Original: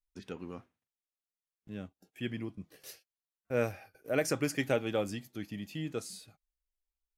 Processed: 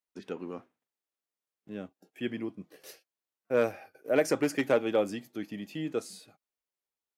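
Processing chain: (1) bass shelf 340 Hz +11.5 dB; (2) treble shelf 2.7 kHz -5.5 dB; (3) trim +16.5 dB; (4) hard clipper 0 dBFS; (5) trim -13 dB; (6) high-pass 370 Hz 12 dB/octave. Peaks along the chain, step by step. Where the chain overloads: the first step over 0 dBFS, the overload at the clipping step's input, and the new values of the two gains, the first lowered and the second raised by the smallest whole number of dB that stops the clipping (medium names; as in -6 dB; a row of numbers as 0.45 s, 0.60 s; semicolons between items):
-13.0 dBFS, -13.0 dBFS, +3.5 dBFS, 0.0 dBFS, -13.0 dBFS, -12.0 dBFS; step 3, 3.5 dB; step 3 +12.5 dB, step 5 -9 dB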